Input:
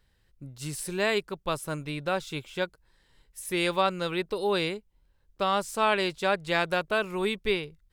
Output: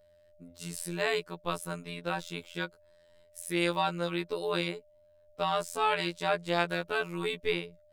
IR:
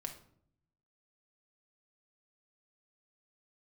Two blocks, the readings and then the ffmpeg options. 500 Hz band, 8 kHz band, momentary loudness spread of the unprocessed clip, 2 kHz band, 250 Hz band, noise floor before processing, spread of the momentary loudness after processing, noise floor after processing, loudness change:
−4.5 dB, −3.5 dB, 11 LU, −3.5 dB, −3.0 dB, −67 dBFS, 10 LU, −62 dBFS, −3.5 dB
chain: -af "afftfilt=real='hypot(re,im)*cos(PI*b)':imag='0':win_size=2048:overlap=0.75,aeval=exprs='val(0)+0.001*sin(2*PI*600*n/s)':channel_layout=same"

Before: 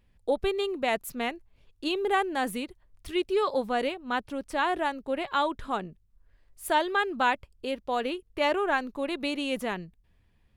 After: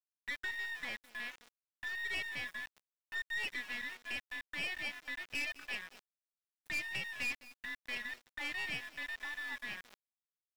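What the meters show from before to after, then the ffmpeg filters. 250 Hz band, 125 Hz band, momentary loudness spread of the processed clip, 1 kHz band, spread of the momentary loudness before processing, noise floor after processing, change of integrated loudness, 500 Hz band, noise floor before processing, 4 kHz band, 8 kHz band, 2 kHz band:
−24.0 dB, −11.0 dB, 8 LU, −26.0 dB, 8 LU, below −85 dBFS, −10.5 dB, −29.5 dB, −65 dBFS, −8.0 dB, −8.0 dB, −4.5 dB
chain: -filter_complex "[0:a]afftfilt=real='real(if(lt(b,272),68*(eq(floor(b/68),0)*1+eq(floor(b/68),1)*0+eq(floor(b/68),2)*3+eq(floor(b/68),3)*2)+mod(b,68),b),0)':imag='imag(if(lt(b,272),68*(eq(floor(b/68),0)*1+eq(floor(b/68),1)*0+eq(floor(b/68),2)*3+eq(floor(b/68),3)*2)+mod(b,68),b),0)':win_size=2048:overlap=0.75,aecho=1:1:1.2:0.64,aresample=32000,aresample=44100,afwtdn=0.0355,acrossover=split=2400[link_01][link_02];[link_01]acompressor=threshold=-40dB:ratio=6[link_03];[link_03][link_02]amix=inputs=2:normalize=0,aeval=exprs='(tanh(31.6*val(0)+0.7)-tanh(0.7))/31.6':channel_layout=same,aecho=1:1:209:0.141,aeval=exprs='val(0)*gte(abs(val(0)),0.00473)':channel_layout=same,areverse,acompressor=mode=upward:threshold=-47dB:ratio=2.5,areverse,bass=frequency=250:gain=-4,treble=frequency=4000:gain=-4,volume=-2.5dB"

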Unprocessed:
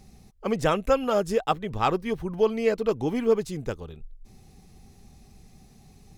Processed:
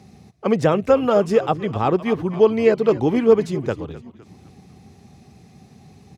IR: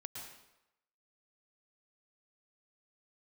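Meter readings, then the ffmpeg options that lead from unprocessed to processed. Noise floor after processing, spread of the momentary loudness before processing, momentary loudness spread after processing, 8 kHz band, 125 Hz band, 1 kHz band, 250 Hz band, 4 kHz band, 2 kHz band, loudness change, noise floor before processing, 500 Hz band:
−50 dBFS, 11 LU, 10 LU, can't be measured, +8.0 dB, +4.0 dB, +8.0 dB, +1.5 dB, +4.0 dB, +7.0 dB, −54 dBFS, +7.5 dB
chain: -filter_complex "[0:a]aemphasis=mode=reproduction:type=50kf,asplit=5[link_01][link_02][link_03][link_04][link_05];[link_02]adelay=254,afreqshift=-70,volume=-17dB[link_06];[link_03]adelay=508,afreqshift=-140,volume=-23dB[link_07];[link_04]adelay=762,afreqshift=-210,volume=-29dB[link_08];[link_05]adelay=1016,afreqshift=-280,volume=-35.1dB[link_09];[link_01][link_06][link_07][link_08][link_09]amix=inputs=5:normalize=0,acrossover=split=700[link_10][link_11];[link_11]alimiter=limit=-24dB:level=0:latency=1:release=122[link_12];[link_10][link_12]amix=inputs=2:normalize=0,highpass=frequency=86:width=0.5412,highpass=frequency=86:width=1.3066,volume=8dB"

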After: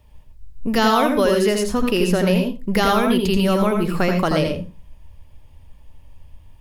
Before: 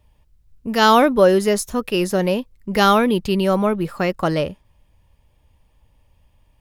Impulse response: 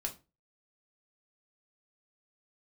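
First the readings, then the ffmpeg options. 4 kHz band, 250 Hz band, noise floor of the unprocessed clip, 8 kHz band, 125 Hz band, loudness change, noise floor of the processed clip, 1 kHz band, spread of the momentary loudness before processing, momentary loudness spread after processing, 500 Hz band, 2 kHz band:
−0.5 dB, +1.0 dB, −60 dBFS, −1.0 dB, +2.5 dB, −1.0 dB, −46 dBFS, −3.0 dB, 12 LU, 7 LU, −1.5 dB, −1.0 dB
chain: -filter_complex "[0:a]acrossover=split=1600|5100[link_01][link_02][link_03];[link_01]acompressor=threshold=-23dB:ratio=4[link_04];[link_02]acompressor=threshold=-32dB:ratio=4[link_05];[link_03]acompressor=threshold=-39dB:ratio=4[link_06];[link_04][link_05][link_06]amix=inputs=3:normalize=0,asplit=2[link_07][link_08];[1:a]atrim=start_sample=2205,lowshelf=frequency=210:gain=8.5,adelay=82[link_09];[link_08][link_09]afir=irnorm=-1:irlink=0,volume=-4.5dB[link_10];[link_07][link_10]amix=inputs=2:normalize=0,volume=4.5dB"

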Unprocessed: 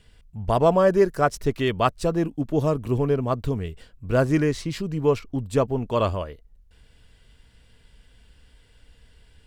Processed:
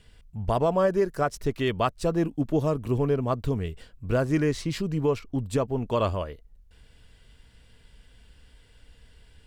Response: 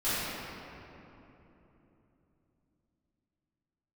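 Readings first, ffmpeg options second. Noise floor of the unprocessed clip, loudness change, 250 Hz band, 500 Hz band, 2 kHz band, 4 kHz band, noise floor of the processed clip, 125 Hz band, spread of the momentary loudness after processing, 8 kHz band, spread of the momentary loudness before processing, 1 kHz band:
−57 dBFS, −3.5 dB, −2.5 dB, −4.0 dB, −4.0 dB, −2.5 dB, −57 dBFS, −2.5 dB, 7 LU, −2.0 dB, 11 LU, −4.0 dB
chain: -af "alimiter=limit=-14dB:level=0:latency=1:release=368"

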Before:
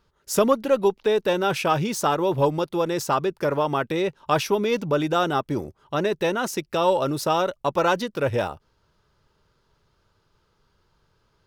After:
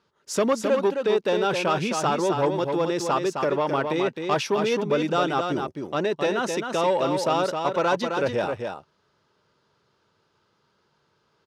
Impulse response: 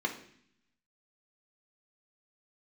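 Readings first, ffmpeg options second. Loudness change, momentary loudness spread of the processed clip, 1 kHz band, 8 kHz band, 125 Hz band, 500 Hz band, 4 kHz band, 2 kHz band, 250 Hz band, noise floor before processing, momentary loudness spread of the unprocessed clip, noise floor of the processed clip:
−1.0 dB, 5 LU, −1.0 dB, −2.0 dB, −3.5 dB, −0.5 dB, −0.5 dB, 0.0 dB, −0.5 dB, −68 dBFS, 5 LU, −69 dBFS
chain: -filter_complex "[0:a]asoftclip=type=tanh:threshold=-14.5dB,highpass=160,lowpass=7400,asplit=2[link_01][link_02];[link_02]aecho=0:1:263:0.531[link_03];[link_01][link_03]amix=inputs=2:normalize=0"

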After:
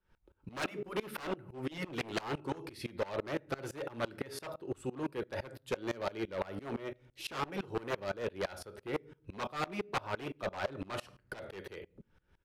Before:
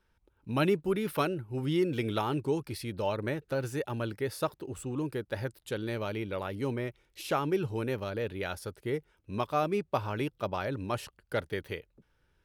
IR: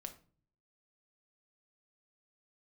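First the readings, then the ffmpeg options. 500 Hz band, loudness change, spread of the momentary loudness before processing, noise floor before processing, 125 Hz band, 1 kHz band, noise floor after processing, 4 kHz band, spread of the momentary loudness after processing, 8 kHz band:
−6.5 dB, −6.5 dB, 8 LU, −73 dBFS, −10.5 dB, −5.5 dB, −73 dBFS, −3.0 dB, 9 LU, −4.0 dB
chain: -filter_complex "[0:a]asplit=2[link_01][link_02];[1:a]atrim=start_sample=2205[link_03];[link_02][link_03]afir=irnorm=-1:irlink=0,volume=3dB[link_04];[link_01][link_04]amix=inputs=2:normalize=0,afftfilt=real='re*lt(hypot(re,im),0.562)':imag='im*lt(hypot(re,im),0.562)':win_size=1024:overlap=0.75,aresample=32000,aresample=44100,aeval=exprs='0.0631*(abs(mod(val(0)/0.0631+3,4)-2)-1)':channel_layout=same,aemphasis=mode=reproduction:type=cd,acrossover=split=300|3000[link_05][link_06][link_07];[link_05]acompressor=threshold=-49dB:ratio=2[link_08];[link_08][link_06][link_07]amix=inputs=3:normalize=0,aeval=exprs='0.141*(cos(1*acos(clip(val(0)/0.141,-1,1)))-cos(1*PI/2))+0.00178*(cos(2*acos(clip(val(0)/0.141,-1,1)))-cos(2*PI/2))+0.0112*(cos(5*acos(clip(val(0)/0.141,-1,1)))-cos(5*PI/2))':channel_layout=same,aeval=exprs='val(0)*pow(10,-24*if(lt(mod(-5.9*n/s,1),2*abs(-5.9)/1000),1-mod(-5.9*n/s,1)/(2*abs(-5.9)/1000),(mod(-5.9*n/s,1)-2*abs(-5.9)/1000)/(1-2*abs(-5.9)/1000))/20)':channel_layout=same"

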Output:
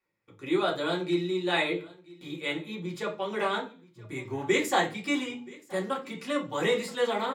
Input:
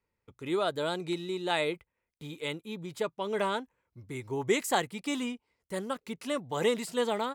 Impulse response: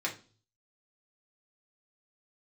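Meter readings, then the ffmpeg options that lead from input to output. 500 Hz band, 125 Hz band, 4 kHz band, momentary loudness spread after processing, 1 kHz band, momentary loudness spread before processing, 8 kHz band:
+1.5 dB, +2.5 dB, +2.5 dB, 13 LU, +2.5 dB, 13 LU, −1.0 dB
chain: -filter_complex "[0:a]aecho=1:1:976:0.075[link_01];[1:a]atrim=start_sample=2205,afade=type=out:start_time=0.33:duration=0.01,atrim=end_sample=14994[link_02];[link_01][link_02]afir=irnorm=-1:irlink=0,volume=-1.5dB"

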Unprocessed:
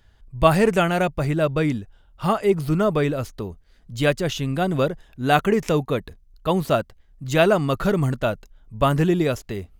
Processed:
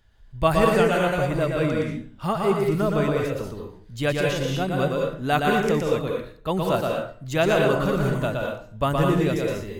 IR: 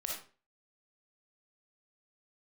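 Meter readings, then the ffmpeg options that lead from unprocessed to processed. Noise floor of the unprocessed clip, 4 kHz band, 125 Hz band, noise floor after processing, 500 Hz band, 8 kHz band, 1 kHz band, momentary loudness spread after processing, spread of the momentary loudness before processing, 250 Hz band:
−55 dBFS, −1.0 dB, −2.0 dB, −47 dBFS, −0.5 dB, −1.0 dB, −1.0 dB, 10 LU, 12 LU, −2.0 dB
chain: -filter_complex "[0:a]asplit=2[link_01][link_02];[1:a]atrim=start_sample=2205,asetrate=34398,aresample=44100,adelay=118[link_03];[link_02][link_03]afir=irnorm=-1:irlink=0,volume=-2dB[link_04];[link_01][link_04]amix=inputs=2:normalize=0,volume=-4.5dB"

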